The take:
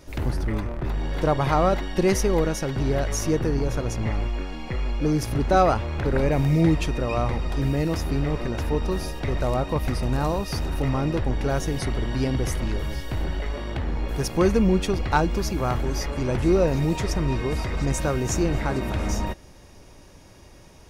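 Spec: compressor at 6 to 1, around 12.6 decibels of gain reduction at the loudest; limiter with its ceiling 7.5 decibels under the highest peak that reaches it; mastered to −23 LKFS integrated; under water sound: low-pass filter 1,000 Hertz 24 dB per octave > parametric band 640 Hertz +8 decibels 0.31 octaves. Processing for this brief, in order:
downward compressor 6 to 1, threshold −29 dBFS
brickwall limiter −25 dBFS
low-pass filter 1,000 Hz 24 dB per octave
parametric band 640 Hz +8 dB 0.31 octaves
level +12 dB

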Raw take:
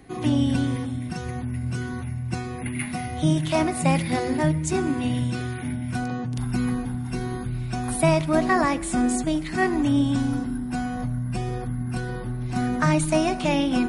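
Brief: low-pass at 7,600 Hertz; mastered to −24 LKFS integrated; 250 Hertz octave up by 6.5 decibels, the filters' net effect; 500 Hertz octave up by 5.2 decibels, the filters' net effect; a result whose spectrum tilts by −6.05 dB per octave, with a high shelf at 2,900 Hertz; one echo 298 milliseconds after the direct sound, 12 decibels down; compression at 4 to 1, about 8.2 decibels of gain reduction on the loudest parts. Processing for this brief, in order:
low-pass filter 7,600 Hz
parametric band 250 Hz +6 dB
parametric band 500 Hz +5.5 dB
high-shelf EQ 2,900 Hz +4 dB
downward compressor 4 to 1, threshold −21 dBFS
single-tap delay 298 ms −12 dB
level +1 dB

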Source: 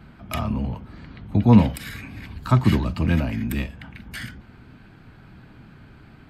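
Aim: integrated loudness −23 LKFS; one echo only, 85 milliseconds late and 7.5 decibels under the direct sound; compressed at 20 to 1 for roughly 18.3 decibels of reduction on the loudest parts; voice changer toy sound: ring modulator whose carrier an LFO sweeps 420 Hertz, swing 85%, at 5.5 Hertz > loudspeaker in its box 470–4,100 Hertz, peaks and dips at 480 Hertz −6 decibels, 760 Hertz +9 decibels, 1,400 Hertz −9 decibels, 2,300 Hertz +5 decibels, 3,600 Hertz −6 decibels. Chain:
downward compressor 20 to 1, threshold −26 dBFS
single-tap delay 85 ms −7.5 dB
ring modulator whose carrier an LFO sweeps 420 Hz, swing 85%, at 5.5 Hz
loudspeaker in its box 470–4,100 Hz, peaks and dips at 480 Hz −6 dB, 760 Hz +9 dB, 1,400 Hz −9 dB, 2,300 Hz +5 dB, 3,600 Hz −6 dB
level +13 dB

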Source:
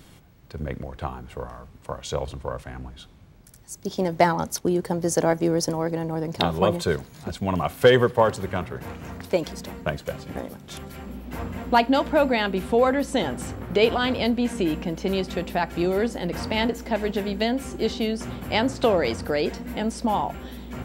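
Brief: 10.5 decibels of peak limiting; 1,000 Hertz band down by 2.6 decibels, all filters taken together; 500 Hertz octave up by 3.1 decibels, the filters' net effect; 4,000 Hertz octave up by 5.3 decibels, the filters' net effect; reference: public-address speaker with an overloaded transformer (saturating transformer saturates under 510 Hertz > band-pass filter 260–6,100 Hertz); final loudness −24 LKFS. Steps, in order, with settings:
parametric band 500 Hz +5.5 dB
parametric band 1,000 Hz −6.5 dB
parametric band 4,000 Hz +8 dB
brickwall limiter −11.5 dBFS
saturating transformer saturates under 510 Hz
band-pass filter 260–6,100 Hz
level +3.5 dB

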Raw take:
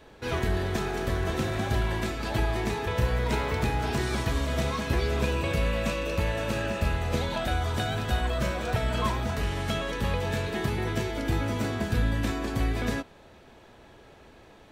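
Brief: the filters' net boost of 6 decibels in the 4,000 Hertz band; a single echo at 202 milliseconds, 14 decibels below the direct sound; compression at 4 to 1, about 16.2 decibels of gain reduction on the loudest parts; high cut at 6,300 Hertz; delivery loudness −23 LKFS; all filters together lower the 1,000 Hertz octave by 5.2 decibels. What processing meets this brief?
low-pass filter 6,300 Hz
parametric band 1,000 Hz −7.5 dB
parametric band 4,000 Hz +8.5 dB
downward compressor 4 to 1, threshold −42 dBFS
single-tap delay 202 ms −14 dB
level +20 dB

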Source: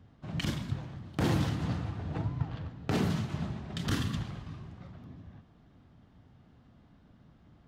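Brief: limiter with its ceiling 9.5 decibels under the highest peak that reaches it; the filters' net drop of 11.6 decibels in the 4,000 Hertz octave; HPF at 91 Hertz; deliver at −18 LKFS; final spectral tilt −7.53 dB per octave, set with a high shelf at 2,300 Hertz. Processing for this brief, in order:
high-pass filter 91 Hz
high-shelf EQ 2,300 Hz −7.5 dB
parametric band 4,000 Hz −9 dB
level +21 dB
brickwall limiter −7 dBFS

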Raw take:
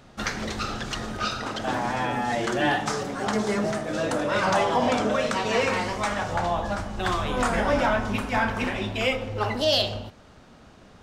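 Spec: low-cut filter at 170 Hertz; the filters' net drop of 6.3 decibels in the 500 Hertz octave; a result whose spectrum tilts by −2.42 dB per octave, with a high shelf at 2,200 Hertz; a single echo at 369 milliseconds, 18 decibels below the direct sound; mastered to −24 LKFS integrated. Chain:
high-pass filter 170 Hz
parametric band 500 Hz −8.5 dB
high-shelf EQ 2,200 Hz +5 dB
single-tap delay 369 ms −18 dB
level +2 dB

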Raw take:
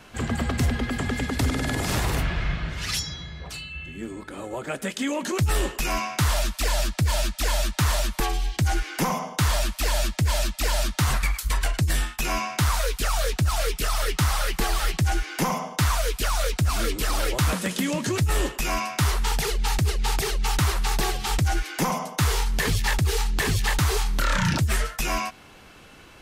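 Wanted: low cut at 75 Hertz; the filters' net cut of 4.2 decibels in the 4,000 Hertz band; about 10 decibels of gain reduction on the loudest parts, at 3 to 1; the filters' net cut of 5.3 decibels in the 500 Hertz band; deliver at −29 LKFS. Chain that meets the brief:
high-pass filter 75 Hz
parametric band 500 Hz −7 dB
parametric band 4,000 Hz −5.5 dB
downward compressor 3 to 1, threshold −33 dBFS
level +6 dB

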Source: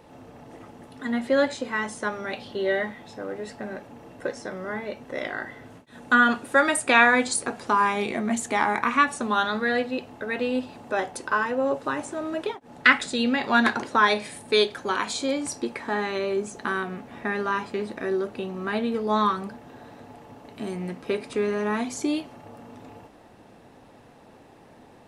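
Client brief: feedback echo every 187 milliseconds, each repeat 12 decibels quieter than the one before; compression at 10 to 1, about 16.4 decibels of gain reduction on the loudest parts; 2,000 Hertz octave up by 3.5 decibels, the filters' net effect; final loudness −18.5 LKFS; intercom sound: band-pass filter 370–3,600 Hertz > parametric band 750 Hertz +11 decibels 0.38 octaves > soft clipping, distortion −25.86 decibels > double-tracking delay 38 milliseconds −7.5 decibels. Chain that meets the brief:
parametric band 2,000 Hz +4.5 dB
downward compressor 10 to 1, threshold −25 dBFS
band-pass filter 370–3,600 Hz
parametric band 750 Hz +11 dB 0.38 octaves
repeating echo 187 ms, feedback 25%, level −12 dB
soft clipping −13.5 dBFS
double-tracking delay 38 ms −7.5 dB
level +11.5 dB

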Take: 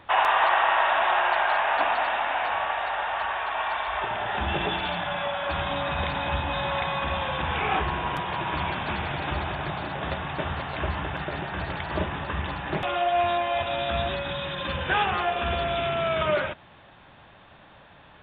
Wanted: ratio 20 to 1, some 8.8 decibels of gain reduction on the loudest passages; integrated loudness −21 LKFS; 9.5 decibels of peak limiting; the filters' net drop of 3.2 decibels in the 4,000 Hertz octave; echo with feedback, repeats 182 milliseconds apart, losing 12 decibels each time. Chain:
parametric band 4,000 Hz −4.5 dB
downward compressor 20 to 1, threshold −26 dBFS
brickwall limiter −26 dBFS
repeating echo 182 ms, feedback 25%, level −12 dB
level +13 dB

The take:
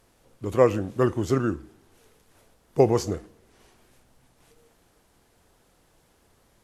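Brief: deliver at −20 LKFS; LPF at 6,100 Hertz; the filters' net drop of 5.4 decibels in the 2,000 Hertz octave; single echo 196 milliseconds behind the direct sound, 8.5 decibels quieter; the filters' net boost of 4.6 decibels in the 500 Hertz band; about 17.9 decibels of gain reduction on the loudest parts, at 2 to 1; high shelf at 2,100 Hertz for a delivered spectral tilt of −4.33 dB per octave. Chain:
low-pass filter 6,100 Hz
parametric band 500 Hz +6 dB
parametric band 2,000 Hz −3.5 dB
high-shelf EQ 2,100 Hz −7.5 dB
downward compressor 2 to 1, threshold −43 dBFS
single-tap delay 196 ms −8.5 dB
level +16.5 dB

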